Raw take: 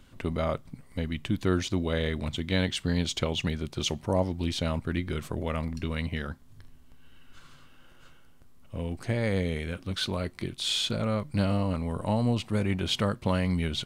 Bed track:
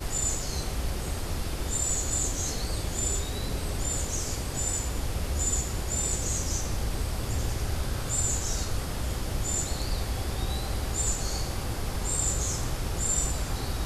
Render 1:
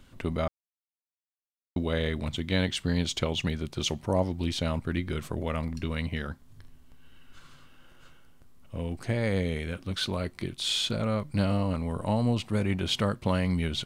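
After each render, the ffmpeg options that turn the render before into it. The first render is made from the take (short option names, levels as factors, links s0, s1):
-filter_complex "[0:a]asplit=3[s0][s1][s2];[s0]atrim=end=0.48,asetpts=PTS-STARTPTS,afade=t=out:st=0.476:d=0.004:c=hsin[s3];[s1]atrim=start=0.48:end=1.76,asetpts=PTS-STARTPTS,volume=0[s4];[s2]atrim=start=1.76,asetpts=PTS-STARTPTS,afade=t=in:d=0.004:c=hsin[s5];[s3][s4][s5]concat=n=3:v=0:a=1"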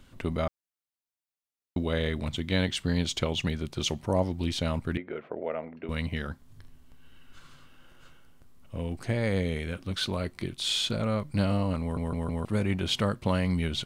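-filter_complex "[0:a]asettb=1/sr,asplit=3[s0][s1][s2];[s0]atrim=end=4.974[s3];[s1]atrim=start=4.97:end=5.89,asetpts=PTS-STARTPTS,afade=t=in:d=0.004:c=qsin,afade=t=out:st=0.916:d=0.004:c=qsin,highpass=370,equalizer=f=450:t=q:w=4:g=5,equalizer=f=660:t=q:w=4:g=5,equalizer=f=1100:t=q:w=4:g=-8,equalizer=f=1700:t=q:w=4:g=-4,lowpass=f=2100:w=0.5412,lowpass=f=2100:w=1.3066[s4];[s2]atrim=start=5.886[s5];[s3][s4]acrossfade=d=0.004:c1=hsin:c2=qsin[s6];[s6][s5]acrossfade=d=0.004:c1=qsin:c2=hsin,asplit=5[s7][s8][s9][s10][s11];[s7]atrim=end=11.972[s12];[s8]atrim=start=11.808:end=11.972[s13];[s9]atrim=start=11.808:end=11.972[s14];[s10]atrim=start=11.808:end=11.972[s15];[s11]atrim=start=12.448[s16];[s12][s13]acrossfade=d=0.004:c1=hsin:c2=hsin[s17];[s17][s14]acrossfade=d=0.004:c1=hsin:c2=hsin[s18];[s18][s15]acrossfade=d=0.004:c1=hsin:c2=hsin[s19];[s19][s16]acrossfade=d=0.004:c1=hsin:c2=hsin"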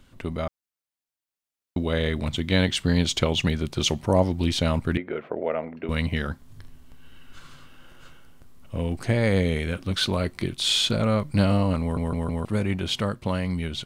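-af "dynaudnorm=f=420:g=9:m=2"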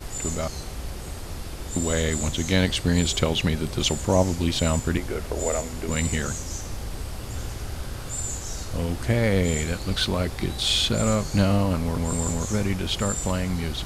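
-filter_complex "[1:a]volume=0.708[s0];[0:a][s0]amix=inputs=2:normalize=0"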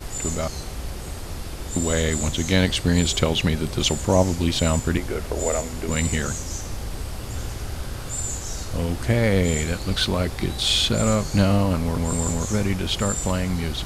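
-af "volume=1.26"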